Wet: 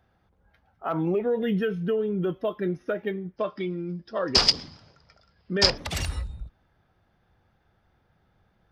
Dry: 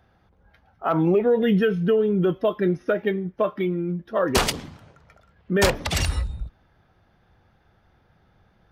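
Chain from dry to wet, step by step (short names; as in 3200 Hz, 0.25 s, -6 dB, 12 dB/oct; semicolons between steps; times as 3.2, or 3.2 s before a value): 3.36–5.78 synth low-pass 5000 Hz, resonance Q 14; gain -6 dB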